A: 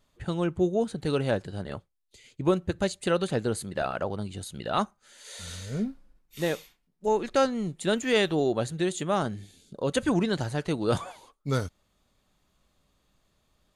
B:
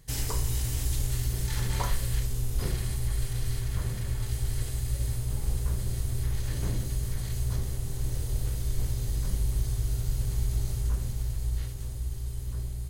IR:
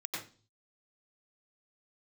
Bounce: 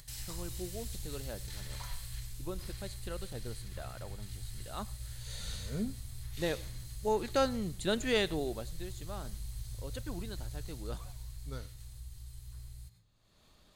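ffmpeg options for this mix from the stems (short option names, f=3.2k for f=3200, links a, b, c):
-filter_complex "[0:a]volume=-6dB,afade=t=in:st=4.76:d=0.27:silence=0.251189,afade=t=out:st=8.11:d=0.6:silence=0.237137,asplit=2[a][b];[b]volume=-23.5dB[c];[1:a]equalizer=f=360:t=o:w=1.8:g=-15,volume=-12.5dB,asplit=2[d][e];[e]volume=-8.5dB[f];[2:a]atrim=start_sample=2205[g];[c][f]amix=inputs=2:normalize=0[h];[h][g]afir=irnorm=-1:irlink=0[i];[a][d][i]amix=inputs=3:normalize=0,equalizer=f=4.2k:w=4.1:g=6.5,acompressor=mode=upward:threshold=-43dB:ratio=2.5"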